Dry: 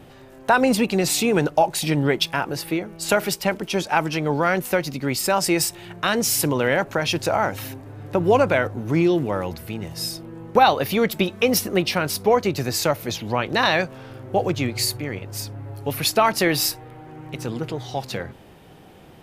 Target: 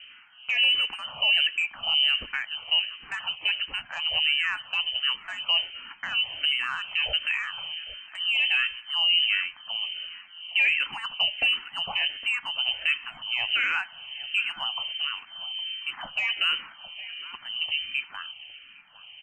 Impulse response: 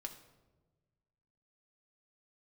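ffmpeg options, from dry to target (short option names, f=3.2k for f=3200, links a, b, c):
-filter_complex "[0:a]asplit=2[a][b];[1:a]atrim=start_sample=2205[c];[b][c]afir=irnorm=-1:irlink=0,volume=-7.5dB[d];[a][d]amix=inputs=2:normalize=0,lowpass=f=2.7k:t=q:w=0.5098,lowpass=f=2.7k:t=q:w=0.6013,lowpass=f=2.7k:t=q:w=0.9,lowpass=f=2.7k:t=q:w=2.563,afreqshift=-3200,asoftclip=type=tanh:threshold=-2.5dB,equalizer=f=420:t=o:w=1.2:g=-13.5,alimiter=limit=-13.5dB:level=0:latency=1:release=13,asplit=2[e][f];[f]adelay=811,lowpass=f=1.1k:p=1,volume=-13dB,asplit=2[g][h];[h]adelay=811,lowpass=f=1.1k:p=1,volume=0.35,asplit=2[i][j];[j]adelay=811,lowpass=f=1.1k:p=1,volume=0.35[k];[e][g][i][k]amix=inputs=4:normalize=0,asplit=2[l][m];[m]afreqshift=-1.4[n];[l][n]amix=inputs=2:normalize=1,volume=-1dB"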